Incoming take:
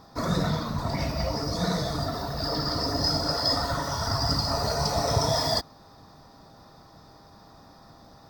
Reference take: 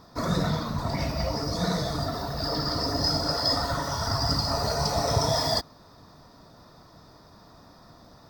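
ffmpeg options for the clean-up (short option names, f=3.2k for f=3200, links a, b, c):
-af "bandreject=f=800:w=30"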